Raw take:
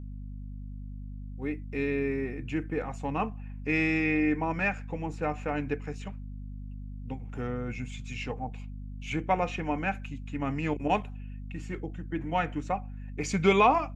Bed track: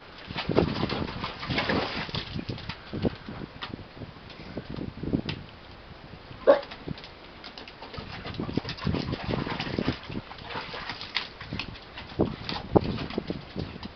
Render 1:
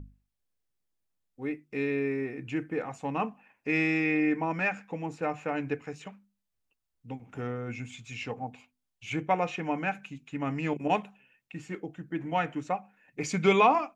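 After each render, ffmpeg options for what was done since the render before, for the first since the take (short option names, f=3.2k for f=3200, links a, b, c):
-af "bandreject=f=50:t=h:w=6,bandreject=f=100:t=h:w=6,bandreject=f=150:t=h:w=6,bandreject=f=200:t=h:w=6,bandreject=f=250:t=h:w=6"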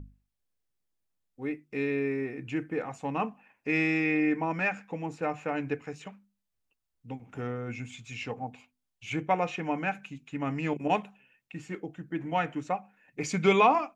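-af anull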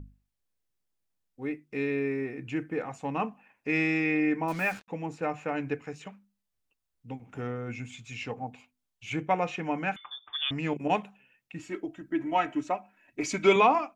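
-filter_complex "[0:a]asettb=1/sr,asplit=3[a][b][c];[a]atrim=end=4.484[d];[b]atrim=start=4.48:end=4.88,asetpts=PTS-STARTPTS,afade=t=in:d=0.004:c=qsin,afade=t=out:st=0.396:d=0.004:c=qsin,acrusher=bits=6:mix=0:aa=0.5[e];[c]atrim=start=4.876[f];[d][e]acrossfade=d=0.004:c1=hsin:c2=qsin[g];[g][f]acrossfade=d=0.004:c1=qsin:c2=hsin,asettb=1/sr,asplit=3[h][i][j];[h]atrim=end=9.964[k];[i]atrim=start=9.96:end=10.51,asetpts=PTS-STARTPTS,afade=t=in:d=0.004:c=qsin,afade=t=out:st=0.546:d=0.004:c=qsin,lowpass=f=3.1k:t=q:w=0.5098,lowpass=f=3.1k:t=q:w=0.6013,lowpass=f=3.1k:t=q:w=0.9,lowpass=f=3.1k:t=q:w=2.563,afreqshift=-3700[l];[j]atrim=start=10.506[m];[k][l]acrossfade=d=0.004:c1=hsin:c2=qsin[n];[n][m]acrossfade=d=0.004:c1=qsin:c2=hsin,asettb=1/sr,asplit=3[o][p][q];[o]atrim=end=11.594[r];[p]atrim=start=11.59:end=13.56,asetpts=PTS-STARTPTS,afade=t=in:d=0.004:c=qsin,afade=t=out:st=1.966:d=0.004:c=qsin,aecho=1:1:3.1:0.77,atrim=end_sample=86877[s];[q]atrim=start=13.556[t];[r][s]acrossfade=d=0.004:c1=hsin:c2=qsin[u];[u][t]acrossfade=d=0.004:c1=qsin:c2=hsin"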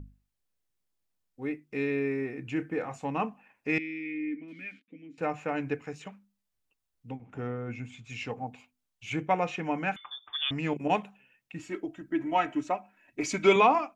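-filter_complex "[0:a]asettb=1/sr,asplit=3[a][b][c];[a]atrim=end=2.554[d];[b]atrim=start=2.55:end=3.05,asetpts=PTS-STARTPTS,afade=t=in:d=0.004:c=qsin,afade=t=out:st=0.496:d=0.004:c=qsin,asplit=2[e][f];[f]adelay=28,volume=-11dB[g];[e][g]amix=inputs=2:normalize=0,atrim=end_sample=22050[h];[c]atrim=start=3.046[i];[d][h]acrossfade=d=0.004:c1=hsin:c2=qsin[j];[j][i]acrossfade=d=0.004:c1=qsin:c2=hsin,asettb=1/sr,asplit=3[k][l][m];[k]atrim=end=3.784[n];[l]atrim=start=3.78:end=5.18,asetpts=PTS-STARTPTS,afade=t=in:d=0.004:c=qsin,afade=t=out:st=1.396:d=0.004:c=qsin,asplit=3[o][p][q];[o]bandpass=f=270:t=q:w=8,volume=0dB[r];[p]bandpass=f=2.29k:t=q:w=8,volume=-6dB[s];[q]bandpass=f=3.01k:t=q:w=8,volume=-9dB[t];[r][s][t]amix=inputs=3:normalize=0[u];[m]atrim=start=5.176[v];[n][u]acrossfade=d=0.004:c1=hsin:c2=qsin[w];[w][v]acrossfade=d=0.004:c1=qsin:c2=hsin,asettb=1/sr,asplit=3[x][y][z];[x]atrim=end=7.114[aa];[y]atrim=start=7.11:end=8.1,asetpts=PTS-STARTPTS,afade=t=in:d=0.004:c=qsin,afade=t=out:st=0.986:d=0.004:c=qsin,highshelf=f=3.3k:g=-10[ab];[z]atrim=start=8.096[ac];[aa][ab]acrossfade=d=0.004:c1=hsin:c2=qsin[ad];[ad][ac]acrossfade=d=0.004:c1=qsin:c2=hsin"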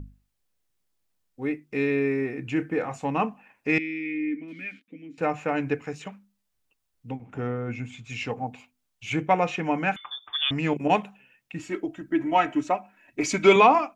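-af "acontrast=30"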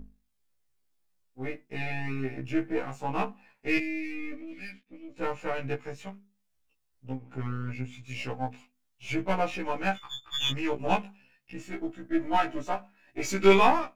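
-af "aeval=exprs='if(lt(val(0),0),0.447*val(0),val(0))':c=same,afftfilt=real='re*1.73*eq(mod(b,3),0)':imag='im*1.73*eq(mod(b,3),0)':win_size=2048:overlap=0.75"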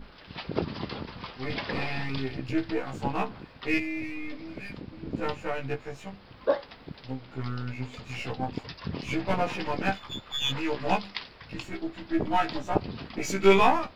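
-filter_complex "[1:a]volume=-6.5dB[a];[0:a][a]amix=inputs=2:normalize=0"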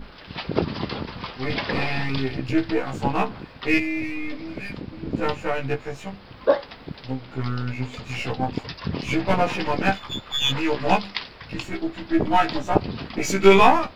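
-af "volume=6.5dB,alimiter=limit=-1dB:level=0:latency=1"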